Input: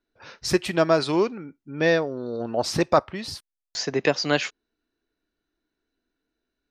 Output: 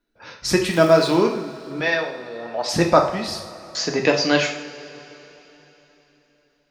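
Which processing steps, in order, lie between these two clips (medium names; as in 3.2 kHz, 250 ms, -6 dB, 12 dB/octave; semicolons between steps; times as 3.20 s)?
0.70–1.15 s: crackle 350 per s -> 71 per s -28 dBFS; 1.80–2.69 s: three-band isolator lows -17 dB, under 580 Hz, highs -21 dB, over 6 kHz; two-slope reverb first 0.54 s, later 3.8 s, from -18 dB, DRR 1.5 dB; trim +2.5 dB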